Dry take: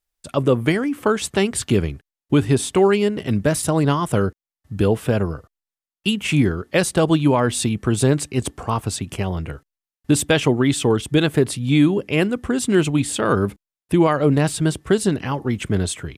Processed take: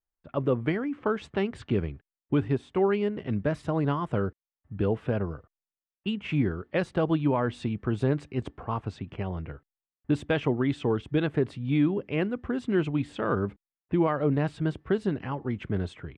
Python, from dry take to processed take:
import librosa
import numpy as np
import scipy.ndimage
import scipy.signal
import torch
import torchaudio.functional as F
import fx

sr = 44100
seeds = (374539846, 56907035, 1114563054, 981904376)

y = fx.env_lowpass(x, sr, base_hz=1700.0, full_db=-16.5)
y = scipy.signal.sosfilt(scipy.signal.butter(2, 2300.0, 'lowpass', fs=sr, output='sos'), y)
y = fx.upward_expand(y, sr, threshold_db=-23.0, expansion=1.5, at=(2.48, 2.88))
y = y * 10.0 ** (-8.5 / 20.0)